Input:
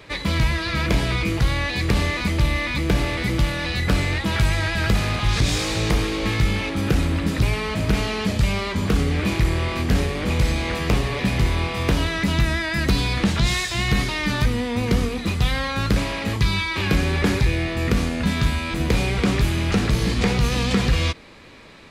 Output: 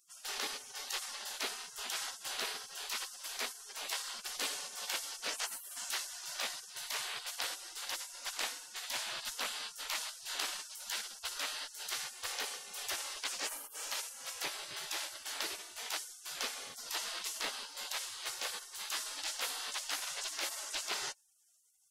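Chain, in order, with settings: 8.32–9.60 s: added noise brown -54 dBFS; spectral gate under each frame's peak -30 dB weak; trim -1.5 dB

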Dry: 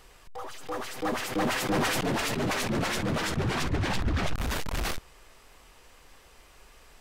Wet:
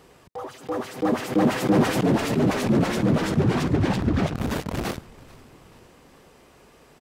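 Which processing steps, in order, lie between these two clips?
high-pass 140 Hz 12 dB/octave; tilt shelf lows +7.5 dB, about 640 Hz; on a send: frequency-shifting echo 435 ms, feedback 54%, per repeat -110 Hz, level -22 dB; on the sum: trim +5.5 dB

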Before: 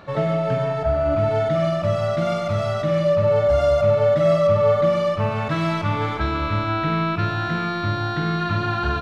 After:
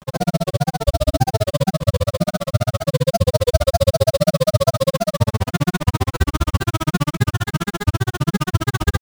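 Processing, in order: bass shelf 190 Hz +10 dB; sample-rate reducer 4.7 kHz, jitter 20%; granulator 42 ms, grains 15 per s, spray 20 ms, pitch spread up and down by 3 st; trim +4 dB

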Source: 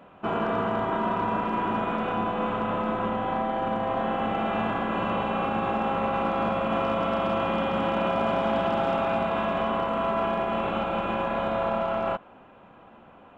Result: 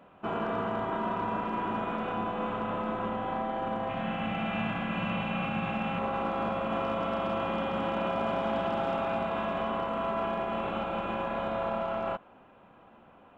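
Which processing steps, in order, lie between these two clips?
3.89–5.99 s: fifteen-band graphic EQ 160 Hz +10 dB, 400 Hz -9 dB, 1 kHz -4 dB, 2.5 kHz +8 dB; trim -5 dB

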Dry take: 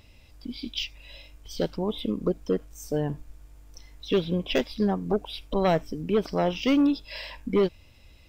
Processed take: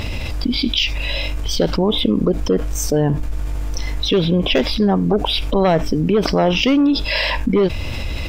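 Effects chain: treble shelf 5.9 kHz -9 dB; level flattener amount 70%; trim +6 dB

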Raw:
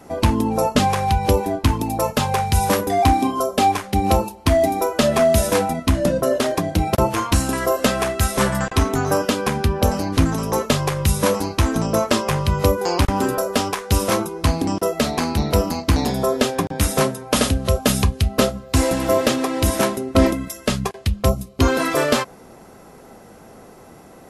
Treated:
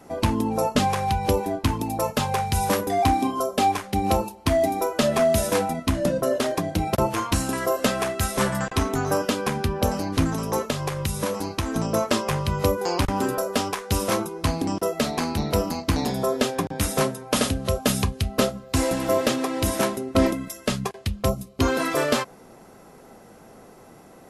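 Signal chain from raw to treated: peaking EQ 66 Hz -8 dB 0.46 oct; 10.63–11.75 s: compression, threshold -18 dBFS, peak gain reduction 6 dB; trim -4 dB

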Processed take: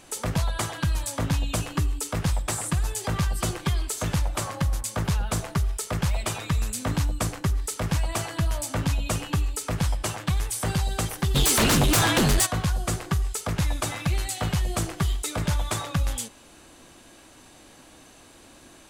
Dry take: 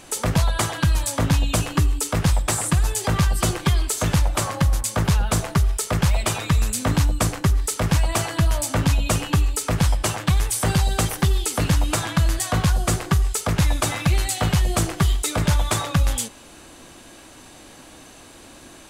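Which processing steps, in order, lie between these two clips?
11.34–12.45 s: sine folder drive 14 dB -> 10 dB, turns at -10 dBFS; trim -6 dB

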